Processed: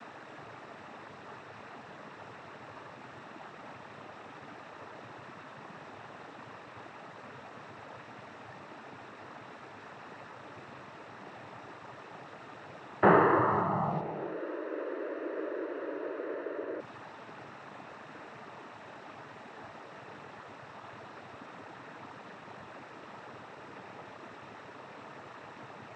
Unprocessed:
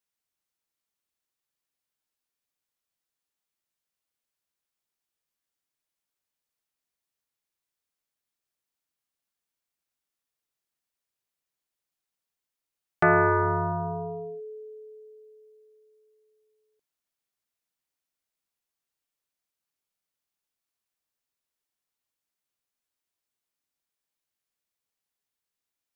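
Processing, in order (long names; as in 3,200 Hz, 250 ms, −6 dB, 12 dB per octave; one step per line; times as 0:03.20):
linear delta modulator 64 kbit/s, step −29.5 dBFS
Chebyshev low-pass filter 1,100 Hz, order 2
cochlear-implant simulation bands 12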